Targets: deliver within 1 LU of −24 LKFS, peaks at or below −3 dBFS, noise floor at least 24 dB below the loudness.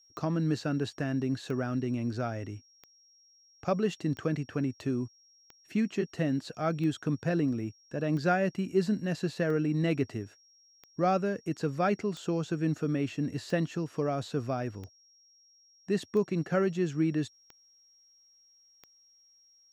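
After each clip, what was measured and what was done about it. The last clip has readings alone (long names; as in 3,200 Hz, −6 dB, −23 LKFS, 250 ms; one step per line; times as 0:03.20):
number of clicks 15; interfering tone 5,600 Hz; level of the tone −60 dBFS; integrated loudness −31.5 LKFS; sample peak −14.0 dBFS; target loudness −24.0 LKFS
→ click removal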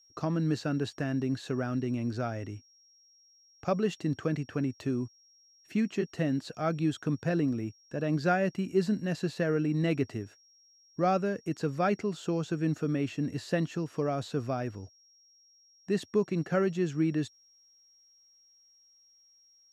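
number of clicks 0; interfering tone 5,600 Hz; level of the tone −60 dBFS
→ notch filter 5,600 Hz, Q 30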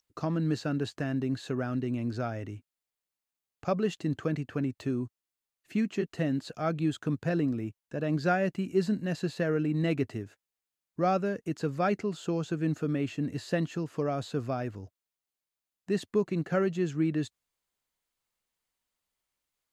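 interfering tone none found; integrated loudness −31.0 LKFS; sample peak −14.0 dBFS; target loudness −24.0 LKFS
→ level +7 dB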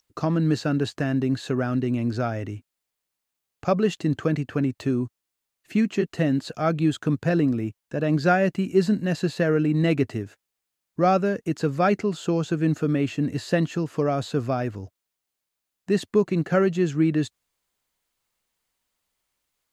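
integrated loudness −24.0 LKFS; sample peak −7.0 dBFS; background noise floor −83 dBFS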